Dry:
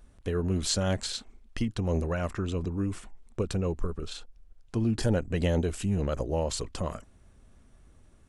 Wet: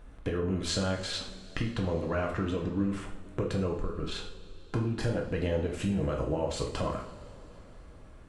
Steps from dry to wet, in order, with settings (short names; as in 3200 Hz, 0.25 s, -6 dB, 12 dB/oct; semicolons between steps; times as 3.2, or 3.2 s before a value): tone controls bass -3 dB, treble -12 dB; compressor 5:1, threshold -36 dBFS, peak gain reduction 12.5 dB; two-slope reverb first 0.49 s, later 4 s, from -20 dB, DRR 0 dB; gain +6.5 dB